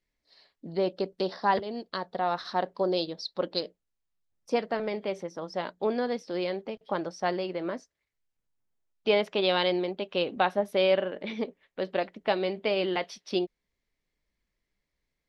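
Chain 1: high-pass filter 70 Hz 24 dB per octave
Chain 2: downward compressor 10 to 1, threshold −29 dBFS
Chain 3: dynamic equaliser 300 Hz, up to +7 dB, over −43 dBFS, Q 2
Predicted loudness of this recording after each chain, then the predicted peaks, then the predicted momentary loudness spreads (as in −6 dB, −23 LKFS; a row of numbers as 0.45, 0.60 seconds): −30.0, −35.5, −28.0 LKFS; −10.0, −17.0, −10.0 dBFS; 10, 5, 10 LU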